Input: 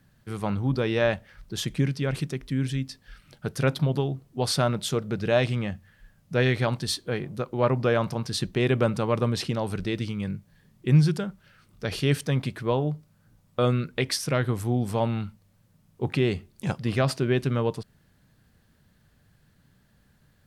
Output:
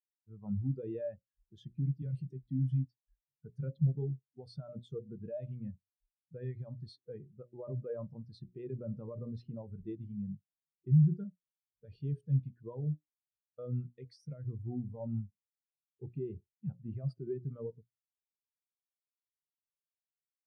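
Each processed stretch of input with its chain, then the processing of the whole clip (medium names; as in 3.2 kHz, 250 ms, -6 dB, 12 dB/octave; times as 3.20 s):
2.02–2.85 s: treble shelf 3.3 kHz +7 dB + doubling 16 ms -9.5 dB + three bands compressed up and down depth 40%
whole clip: hum notches 60/120/180/240/300/360/420/480/540/600 Hz; peak limiter -20 dBFS; spectral contrast expander 2.5:1; trim +2.5 dB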